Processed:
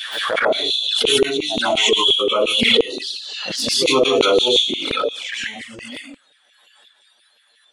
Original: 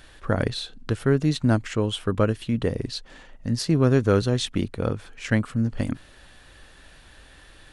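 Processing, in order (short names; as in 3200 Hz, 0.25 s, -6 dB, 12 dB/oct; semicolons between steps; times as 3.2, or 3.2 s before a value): bell 3400 Hz +12.5 dB 0.3 oct; on a send: narrowing echo 0.494 s, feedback 70%, band-pass 2300 Hz, level -23.5 dB; on the sum: plate-style reverb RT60 0.7 s, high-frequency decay 0.85×, pre-delay 0.11 s, DRR -9.5 dB; spectral noise reduction 19 dB; dynamic EQ 520 Hz, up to +6 dB, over -34 dBFS, Q 1.3; in parallel at -2.5 dB: limiter -14 dBFS, peak gain reduction 20.5 dB; on the sum: LFO high-pass saw down 5.7 Hz 450–2700 Hz; envelope flanger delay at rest 9.3 ms, full sweep at -12.5 dBFS; backwards sustainer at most 28 dB/s; gain -6.5 dB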